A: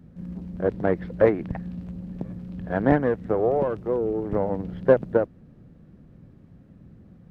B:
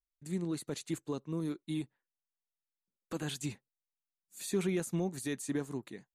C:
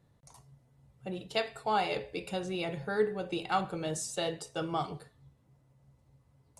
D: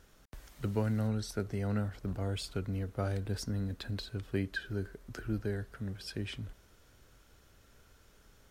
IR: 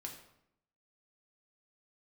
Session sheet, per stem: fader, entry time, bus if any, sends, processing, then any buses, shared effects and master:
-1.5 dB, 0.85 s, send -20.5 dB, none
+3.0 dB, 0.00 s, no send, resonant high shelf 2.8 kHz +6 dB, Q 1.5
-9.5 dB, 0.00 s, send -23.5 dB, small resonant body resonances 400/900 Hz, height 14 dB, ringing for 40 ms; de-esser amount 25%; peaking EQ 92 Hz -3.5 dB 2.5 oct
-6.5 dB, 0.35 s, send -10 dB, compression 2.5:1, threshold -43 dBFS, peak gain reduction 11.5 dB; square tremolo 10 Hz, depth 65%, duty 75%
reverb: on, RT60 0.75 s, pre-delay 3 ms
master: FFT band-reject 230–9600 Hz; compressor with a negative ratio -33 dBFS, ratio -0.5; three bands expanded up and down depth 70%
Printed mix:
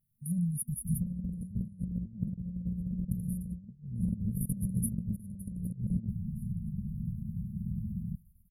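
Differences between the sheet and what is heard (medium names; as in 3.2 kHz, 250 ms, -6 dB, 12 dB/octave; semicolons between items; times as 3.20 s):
stem A -1.5 dB -> +6.5 dB; stem C -9.5 dB -> -18.5 dB; master: missing three bands expanded up and down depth 70%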